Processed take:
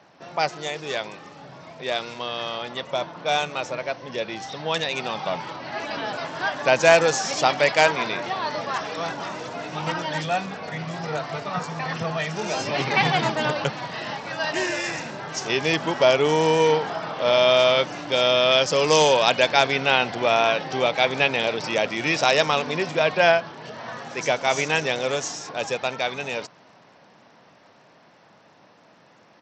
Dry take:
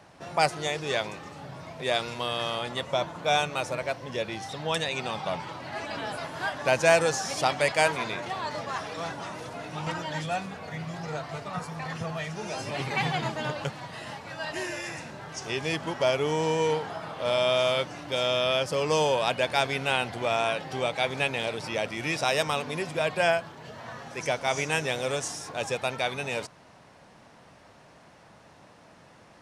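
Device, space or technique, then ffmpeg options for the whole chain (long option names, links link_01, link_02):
Bluetooth headset: -filter_complex "[0:a]asettb=1/sr,asplit=3[link_01][link_02][link_03];[link_01]atrim=end=18.514[link_04];[link_02]atrim=start=18.51:end=19.5,asetpts=PTS-STARTPTS,afade=type=in:duration=0.004:curve=qsin,afade=type=out:start_time=0.986:duration=0.004:curve=qsin,aemphasis=mode=production:type=cd[link_05];[link_03]atrim=start=19.496[link_06];[link_04][link_05]acrossfade=duration=0.004:curve1=hsin:curve2=qsin[link_07];[link_07][link_06]acrossfade=duration=0.004:curve1=qsin:curve2=hsin,highpass=160,dynaudnorm=framelen=440:gausssize=21:maxgain=13dB,aresample=16000,aresample=44100" -ar 32000 -c:a sbc -b:a 64k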